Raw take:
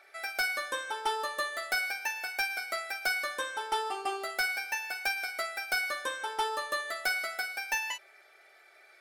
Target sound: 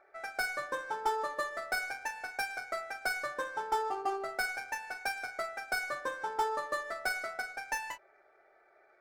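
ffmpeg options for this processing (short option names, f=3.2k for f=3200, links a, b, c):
-af "adynamicsmooth=sensitivity=6.5:basefreq=1.7k,equalizer=f=3.1k:t=o:w=1.2:g=-12.5,volume=1.5dB"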